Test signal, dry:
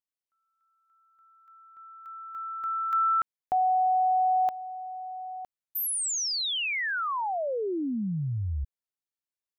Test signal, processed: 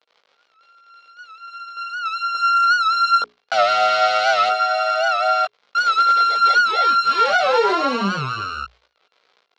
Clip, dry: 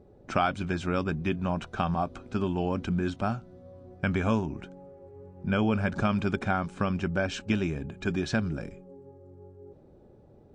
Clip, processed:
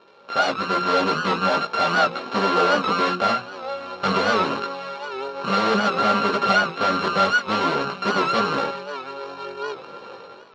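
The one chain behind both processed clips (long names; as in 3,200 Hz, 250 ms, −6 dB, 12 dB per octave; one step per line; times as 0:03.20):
samples sorted by size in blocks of 32 samples
mains-hum notches 60/120/180/240/300/360/420 Hz
automatic gain control gain up to 13.5 dB
surface crackle 64 per second −42 dBFS
mid-hump overdrive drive 8 dB, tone 3,400 Hz, clips at −1.5 dBFS
gain into a clipping stage and back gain 20 dB
multi-voice chorus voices 6, 0.32 Hz, delay 18 ms, depth 3.6 ms
loudspeaker in its box 290–4,600 Hz, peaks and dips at 310 Hz −8 dB, 480 Hz +6 dB, 910 Hz −3 dB, 1,800 Hz −6 dB, 2,700 Hz −5 dB
wow of a warped record 78 rpm, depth 100 cents
level +8.5 dB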